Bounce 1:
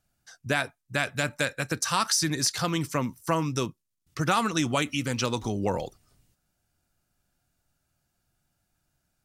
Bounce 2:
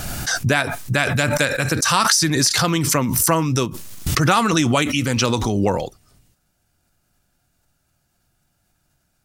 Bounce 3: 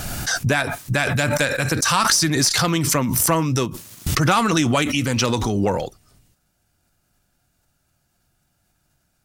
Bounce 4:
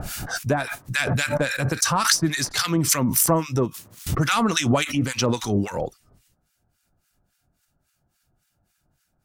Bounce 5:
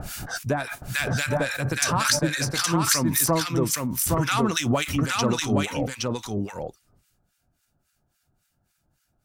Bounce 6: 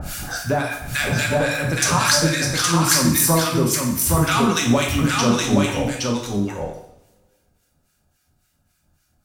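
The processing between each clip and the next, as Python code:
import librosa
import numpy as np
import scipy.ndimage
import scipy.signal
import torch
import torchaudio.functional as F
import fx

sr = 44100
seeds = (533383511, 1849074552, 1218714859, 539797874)

y1 = fx.pre_swell(x, sr, db_per_s=27.0)
y1 = y1 * librosa.db_to_amplitude(7.5)
y2 = fx.diode_clip(y1, sr, knee_db=-5.0)
y3 = fx.harmonic_tremolo(y2, sr, hz=3.6, depth_pct=100, crossover_hz=1200.0)
y3 = y3 * librosa.db_to_amplitude(1.5)
y4 = y3 + 10.0 ** (-3.0 / 20.0) * np.pad(y3, (int(818 * sr / 1000.0), 0))[:len(y3)]
y4 = y4 * librosa.db_to_amplitude(-3.0)
y5 = fx.rev_double_slope(y4, sr, seeds[0], early_s=0.7, late_s=2.1, knee_db=-24, drr_db=-0.5)
y5 = y5 * librosa.db_to_amplitude(2.0)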